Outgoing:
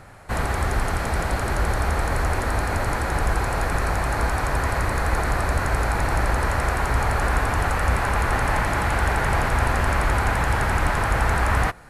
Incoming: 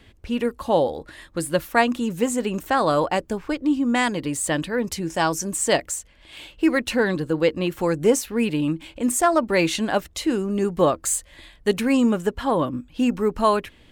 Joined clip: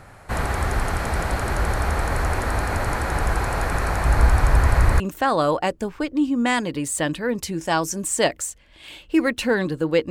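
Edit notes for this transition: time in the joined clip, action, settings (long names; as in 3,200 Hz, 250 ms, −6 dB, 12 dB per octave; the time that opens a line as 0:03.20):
outgoing
0:04.05–0:05.00: low-shelf EQ 110 Hz +11.5 dB
0:05.00: continue with incoming from 0:02.49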